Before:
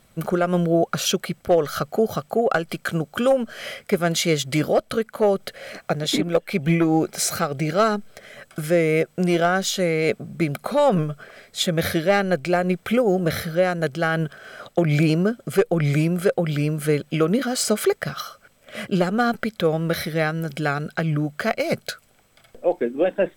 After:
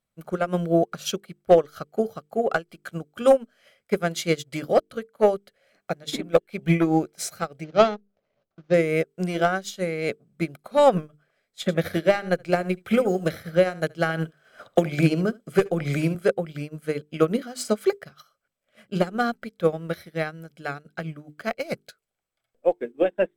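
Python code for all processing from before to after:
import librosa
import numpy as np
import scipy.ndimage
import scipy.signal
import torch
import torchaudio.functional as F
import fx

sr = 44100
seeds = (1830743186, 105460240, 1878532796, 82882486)

y = fx.chain(x, sr, fx.median_filter(points=25),
    fx.steep_lowpass(hz=6200.0, slope=36),
    fx.dynamic_eq(hz=720.0, q=2.5, threshold_db=-32.0, ratio=4.0, max_db=4), at=(7.64, 8.74))
y = fx.chain(y, sr, fx.echo_single(ms=74, db=-13.0),
    fx.band_squash(depth_pct=70), at=(11.61, 16.15))
y = fx.hum_notches(y, sr, base_hz=50, count=9)
y = fx.upward_expand(y, sr, threshold_db=-34.0, expansion=2.5)
y = y * librosa.db_to_amplitude(4.0)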